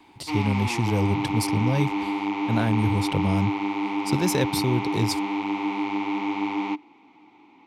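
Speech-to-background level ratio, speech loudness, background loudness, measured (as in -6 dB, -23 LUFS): 1.5 dB, -26.0 LUFS, -27.5 LUFS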